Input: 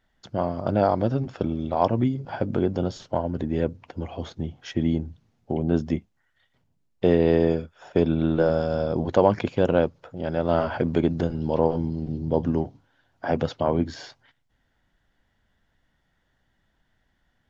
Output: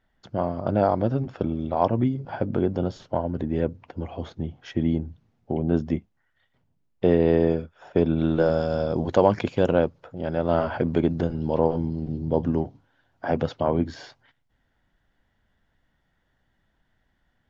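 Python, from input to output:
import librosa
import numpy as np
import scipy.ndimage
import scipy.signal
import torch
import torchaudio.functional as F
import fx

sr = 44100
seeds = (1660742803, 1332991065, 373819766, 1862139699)

y = fx.high_shelf(x, sr, hz=4400.0, db=fx.steps((0.0, -10.5), (8.16, 2.5), (9.71, -6.5)))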